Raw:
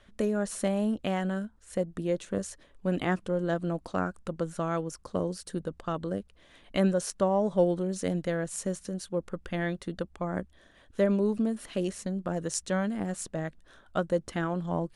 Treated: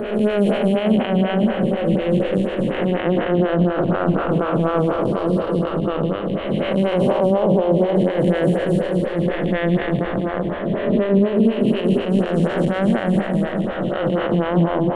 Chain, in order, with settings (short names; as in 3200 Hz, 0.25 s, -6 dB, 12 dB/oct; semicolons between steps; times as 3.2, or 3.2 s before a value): time blur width 0.604 s; in parallel at -3 dB: crossover distortion -50.5 dBFS; on the sum: resonant high shelf 4300 Hz -13 dB, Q 3; on a send: repeats that get brighter 0.191 s, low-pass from 400 Hz, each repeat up 1 oct, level -6 dB; on the sum: maximiser +21.5 dB; photocell phaser 4.1 Hz; gain -5.5 dB